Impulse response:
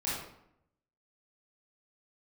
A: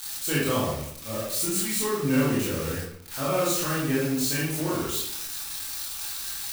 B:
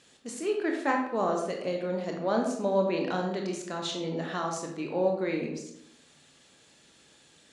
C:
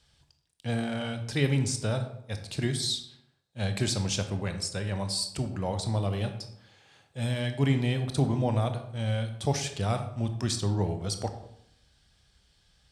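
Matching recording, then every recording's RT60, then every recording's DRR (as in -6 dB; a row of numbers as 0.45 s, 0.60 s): A; 0.75 s, 0.75 s, 0.75 s; -8.5 dB, 1.0 dB, 7.0 dB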